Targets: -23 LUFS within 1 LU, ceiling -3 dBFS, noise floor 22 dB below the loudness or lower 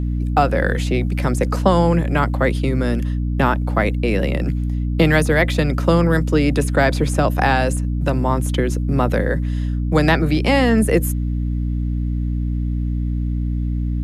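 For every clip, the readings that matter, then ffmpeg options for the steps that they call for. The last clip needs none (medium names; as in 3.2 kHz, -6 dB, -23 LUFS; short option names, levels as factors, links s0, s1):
hum 60 Hz; highest harmonic 300 Hz; hum level -18 dBFS; loudness -19.0 LUFS; peak level -1.5 dBFS; loudness target -23.0 LUFS
-> -af "bandreject=f=60:t=h:w=6,bandreject=f=120:t=h:w=6,bandreject=f=180:t=h:w=6,bandreject=f=240:t=h:w=6,bandreject=f=300:t=h:w=6"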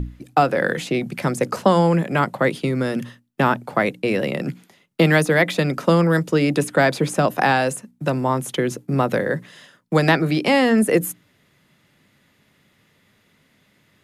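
hum not found; loudness -20.0 LUFS; peak level -3.0 dBFS; loudness target -23.0 LUFS
-> -af "volume=0.708"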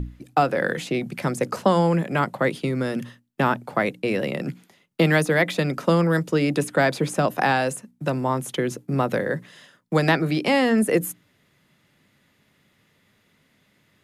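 loudness -23.0 LUFS; peak level -6.0 dBFS; noise floor -64 dBFS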